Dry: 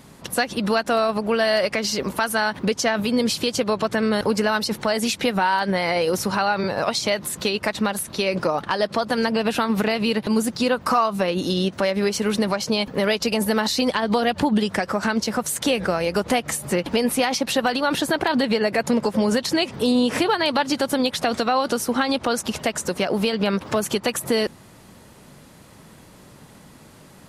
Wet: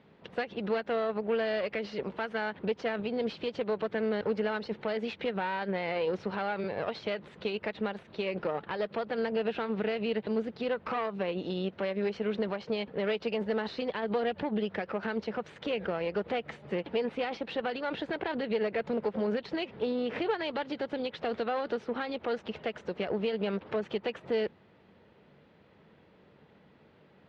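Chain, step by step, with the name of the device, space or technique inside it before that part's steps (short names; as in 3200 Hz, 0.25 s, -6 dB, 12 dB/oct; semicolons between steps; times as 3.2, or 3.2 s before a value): guitar amplifier (tube stage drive 17 dB, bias 0.7; tone controls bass +5 dB, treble -1 dB; speaker cabinet 110–3400 Hz, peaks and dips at 120 Hz -10 dB, 170 Hz -4 dB, 260 Hz -6 dB, 450 Hz +6 dB, 1100 Hz -4 dB); gain -8 dB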